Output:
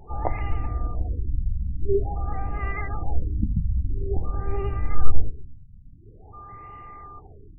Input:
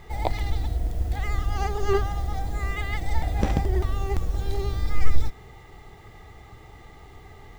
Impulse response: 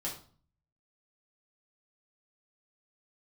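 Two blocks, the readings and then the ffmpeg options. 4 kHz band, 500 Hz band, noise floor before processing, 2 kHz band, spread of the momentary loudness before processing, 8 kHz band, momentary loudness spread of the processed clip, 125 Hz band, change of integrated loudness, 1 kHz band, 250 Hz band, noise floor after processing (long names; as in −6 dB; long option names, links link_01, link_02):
below −15 dB, 0.0 dB, −48 dBFS, −4.5 dB, 22 LU, can't be measured, 17 LU, −0.5 dB, −1.0 dB, −2.5 dB, −1.0 dB, −47 dBFS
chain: -filter_complex "[0:a]aeval=exprs='val(0)+0.01*sin(2*PI*1200*n/s)':channel_layout=same,asplit=2[link_01][link_02];[1:a]atrim=start_sample=2205,asetrate=37926,aresample=44100[link_03];[link_02][link_03]afir=irnorm=-1:irlink=0,volume=-14dB[link_04];[link_01][link_04]amix=inputs=2:normalize=0,afftfilt=real='re*lt(b*sr/1024,240*pow(3000/240,0.5+0.5*sin(2*PI*0.48*pts/sr)))':imag='im*lt(b*sr/1024,240*pow(3000/240,0.5+0.5*sin(2*PI*0.48*pts/sr)))':win_size=1024:overlap=0.75,volume=-1dB"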